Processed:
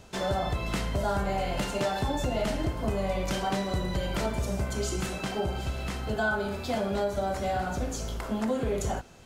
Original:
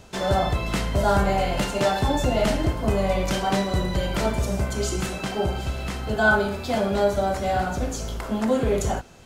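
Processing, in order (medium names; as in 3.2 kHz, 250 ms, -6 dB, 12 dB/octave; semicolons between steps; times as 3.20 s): compression 3:1, threshold -22 dBFS, peak gain reduction 7 dB; trim -3.5 dB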